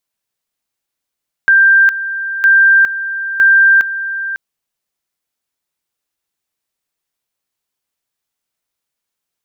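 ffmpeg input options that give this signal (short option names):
-f lavfi -i "aevalsrc='pow(10,(-5-12.5*gte(mod(t,0.96),0.41))/20)*sin(2*PI*1580*t)':d=2.88:s=44100"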